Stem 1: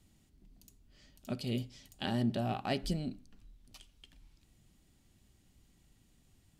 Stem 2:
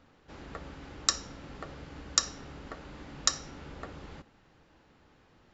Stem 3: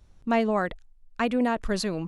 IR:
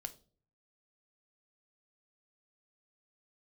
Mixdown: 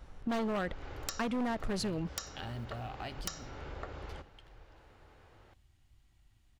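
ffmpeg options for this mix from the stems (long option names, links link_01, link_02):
-filter_complex "[0:a]equalizer=frequency=460:width_type=o:width=0.74:gain=-14,acrusher=bits=7:mode=log:mix=0:aa=0.000001,adelay=350,volume=1.5dB,asplit=2[link_01][link_02];[link_02]volume=-19.5dB[link_03];[1:a]volume=2dB,asplit=2[link_04][link_05];[link_05]volume=-9.5dB[link_06];[2:a]lowshelf=frequency=320:gain=4,asoftclip=type=tanh:threshold=-19dB,volume=0dB,asplit=2[link_07][link_08];[link_08]volume=-18.5dB[link_09];[link_01][link_04]amix=inputs=2:normalize=0,firequalizer=gain_entry='entry(110,0);entry(170,-16);entry(380,0);entry(7700,-12)':delay=0.05:min_phase=1,acompressor=threshold=-40dB:ratio=3,volume=0dB[link_10];[3:a]atrim=start_sample=2205[link_11];[link_03][link_06][link_09]amix=inputs=3:normalize=0[link_12];[link_12][link_11]afir=irnorm=-1:irlink=0[link_13];[link_07][link_10][link_13]amix=inputs=3:normalize=0,aeval=exprs='0.0841*(abs(mod(val(0)/0.0841+3,4)-2)-1)':channel_layout=same,acompressor=threshold=-35dB:ratio=2.5"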